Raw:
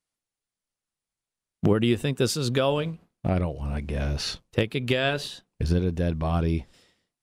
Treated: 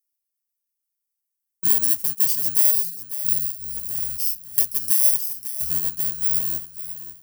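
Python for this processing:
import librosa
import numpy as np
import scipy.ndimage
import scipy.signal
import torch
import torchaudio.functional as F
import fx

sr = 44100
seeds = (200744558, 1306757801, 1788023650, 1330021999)

p1 = fx.bit_reversed(x, sr, seeds[0], block=32)
p2 = F.preemphasis(torch.from_numpy(p1), 0.8).numpy()
p3 = fx.spec_box(p2, sr, start_s=3.11, length_s=0.65, low_hz=380.0, high_hz=3700.0, gain_db=-19)
p4 = fx.high_shelf(p3, sr, hz=4200.0, db=10.0)
p5 = p4 + fx.echo_feedback(p4, sr, ms=547, feedback_pct=25, wet_db=-12.0, dry=0)
p6 = fx.spec_erase(p5, sr, start_s=2.71, length_s=0.29, low_hz=470.0, high_hz=3600.0)
y = p6 * librosa.db_to_amplitude(-3.5)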